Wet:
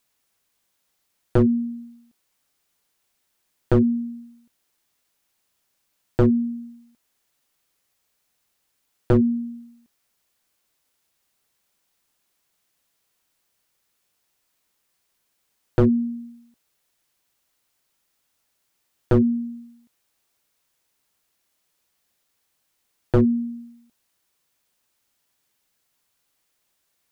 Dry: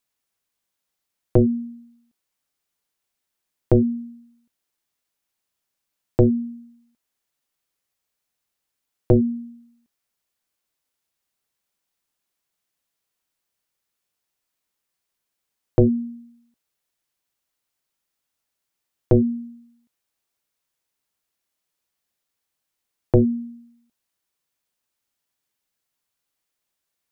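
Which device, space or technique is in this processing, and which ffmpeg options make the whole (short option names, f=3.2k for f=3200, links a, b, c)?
clipper into limiter: -af "asoftclip=type=hard:threshold=-13dB,alimiter=limit=-20.5dB:level=0:latency=1:release=393,volume=8dB"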